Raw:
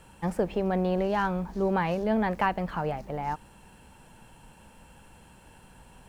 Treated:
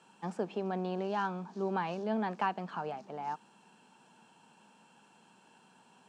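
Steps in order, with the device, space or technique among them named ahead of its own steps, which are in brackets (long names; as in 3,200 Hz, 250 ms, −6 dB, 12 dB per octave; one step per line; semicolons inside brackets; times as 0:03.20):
television speaker (loudspeaker in its box 200–7,700 Hz, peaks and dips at 300 Hz −5 dB, 540 Hz −8 dB, 2,000 Hz −9 dB)
level −4.5 dB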